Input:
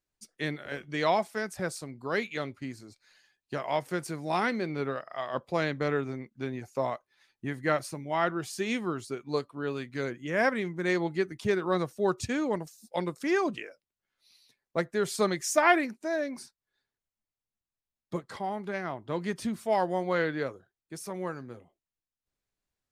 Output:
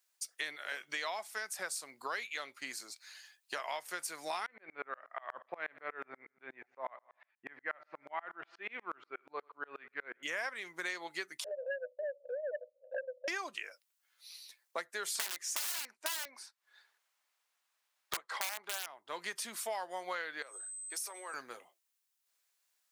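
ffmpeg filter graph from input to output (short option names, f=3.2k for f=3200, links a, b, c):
-filter_complex "[0:a]asettb=1/sr,asplit=3[a][b][c];[a]atrim=end=4.464[d];[b]atrim=start=4.46:end=10.23,asetpts=PTS-STARTPTS,afade=t=in:d=0.004:c=qsin,afade=t=out:st=5.766:d=0.004:c=qsin,lowpass=f=2.3k:w=0.5412,lowpass=f=2.3k:w=1.3066,aecho=1:1:84|168|252|336:0.075|0.0405|0.0219|0.0118,atrim=end_sample=254457,aeval=exprs='val(0)*pow(10,-34*if(lt(mod(-8.3*n/s,1),2*abs(-8.3)/1000),1-mod(-8.3*n/s,1)/(2*abs(-8.3)/1000),(mod(-8.3*n/s,1)-2*abs(-8.3)/1000)/(1-2*abs(-8.3)/1000))/20)':c=same[e];[c]atrim=start=10.226[f];[d][e]acrossfade=d=0.004:c1=hsin:c2=qsin[g];[g][f]acrossfade=d=0.004:c1=qsin:c2=hsin,asettb=1/sr,asplit=3[h][i][j];[h]atrim=end=11.444[k];[i]atrim=start=11.44:end=13.28,asetpts=PTS-STARTPTS,afade=t=in:d=0.004:c=qsin,afade=t=out:st=1.836:d=0.004:c=qsin,asuperpass=centerf=550:order=8:qfactor=4.8,acompressor=mode=upward:threshold=-39dB:ratio=2.5:attack=3.2:release=140:knee=2.83:detection=peak,aeval=exprs='0.0631*sin(PI/2*1.78*val(0)/0.0631)':c=same[l];[j]atrim=start=13.276[m];[k][l]acrossfade=d=0.004:c1=hsin:c2=qsin[n];[n][m]acrossfade=d=0.004:c1=qsin:c2=hsin,asettb=1/sr,asplit=3[o][p][q];[o]atrim=end=15.154[r];[p]atrim=start=15.15:end=18.86,asetpts=PTS-STARTPTS,afade=t=in:d=0.004:c=qsin,afade=t=out:st=3.706:d=0.004:c=qsin,asplit=2[s][t];[t]highpass=f=720:p=1,volume=13dB,asoftclip=type=tanh:threshold=-9dB[u];[s][u]amix=inputs=2:normalize=0,lowpass=f=1.3k:p=1,volume=-6dB,acontrast=62,aeval=exprs='(mod(7.5*val(0)+1,2)-1)/7.5':c=same[v];[q]atrim=start=18.856[w];[r][v]acrossfade=d=0.004:c1=hsin:c2=qsin[x];[x][w]acrossfade=d=0.004:c1=qsin:c2=hsin,asettb=1/sr,asplit=3[y][z][aa];[y]atrim=end=20.424[ab];[z]atrim=start=20.42:end=21.34,asetpts=PTS-STARTPTS,afade=t=in:d=0.004:c=qsin,afade=t=out:st=0.916:d=0.004:c=qsin,highpass=f=290:w=0.5412,highpass=f=290:w=1.3066,aeval=exprs='val(0)+0.00178*sin(2*PI*8200*n/s)':c=same,acompressor=threshold=-42dB:ratio=8:attack=3.2:release=140:knee=1:detection=peak[ac];[aa]atrim=start=21.336[ad];[ab][ac]acrossfade=d=0.004:c1=hsin:c2=qsin[ae];[ae][ad]acrossfade=d=0.004:c1=qsin:c2=hsin,highpass=930,highshelf=f=5.8k:g=8,acompressor=threshold=-44dB:ratio=6,volume=7.5dB"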